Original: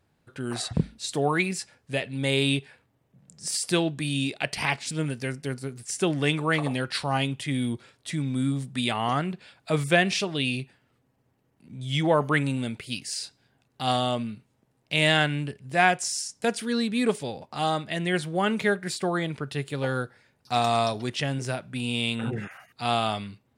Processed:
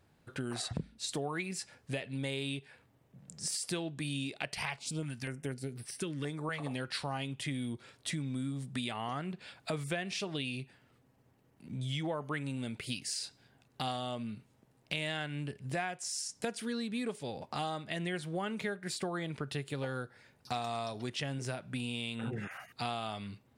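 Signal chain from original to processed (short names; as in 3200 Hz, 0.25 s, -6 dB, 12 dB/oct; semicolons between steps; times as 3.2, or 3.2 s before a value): compressor 6:1, threshold -36 dBFS, peak gain reduction 19.5 dB; 4.54–6.6 stepped notch 4.1 Hz 290–7000 Hz; gain +1.5 dB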